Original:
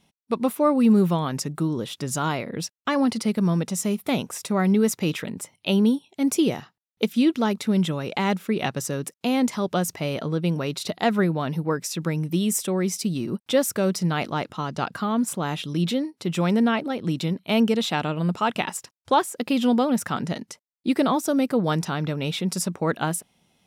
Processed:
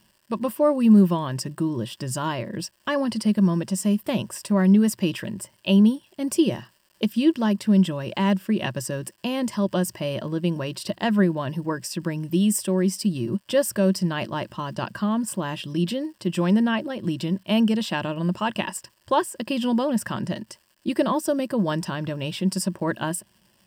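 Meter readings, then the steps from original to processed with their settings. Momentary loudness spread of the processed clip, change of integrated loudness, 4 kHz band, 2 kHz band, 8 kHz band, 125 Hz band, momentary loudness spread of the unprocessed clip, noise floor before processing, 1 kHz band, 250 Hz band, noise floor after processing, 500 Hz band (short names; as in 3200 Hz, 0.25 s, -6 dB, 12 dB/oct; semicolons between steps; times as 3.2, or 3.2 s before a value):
10 LU, +0.5 dB, -1.0 dB, -1.0 dB, -2.0 dB, +0.5 dB, 8 LU, -75 dBFS, -2.5 dB, +1.0 dB, -63 dBFS, -0.5 dB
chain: low shelf 170 Hz +7 dB; crackle 440/s -46 dBFS; ripple EQ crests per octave 1.3, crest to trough 10 dB; gain -3 dB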